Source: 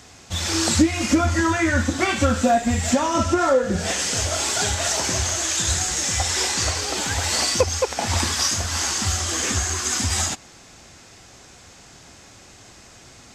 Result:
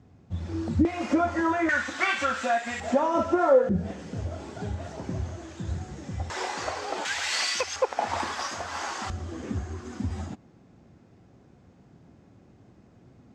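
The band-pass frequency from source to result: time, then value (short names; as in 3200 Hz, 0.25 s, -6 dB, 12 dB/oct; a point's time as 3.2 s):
band-pass, Q 0.97
140 Hz
from 0.85 s 640 Hz
from 1.69 s 1700 Hz
from 2.8 s 590 Hz
from 3.69 s 160 Hz
from 6.3 s 750 Hz
from 7.05 s 2200 Hz
from 7.76 s 830 Hz
from 9.1 s 180 Hz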